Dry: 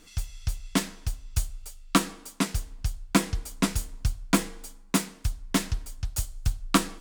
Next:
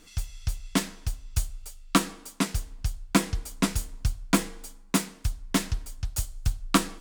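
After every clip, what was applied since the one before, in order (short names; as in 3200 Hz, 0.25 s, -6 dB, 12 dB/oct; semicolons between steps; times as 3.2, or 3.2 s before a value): nothing audible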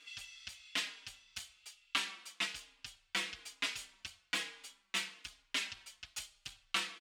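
soft clip -22.5 dBFS, distortion -8 dB; band-pass 2800 Hz, Q 1.9; endless flanger 4.4 ms -1.1 Hz; gain +8 dB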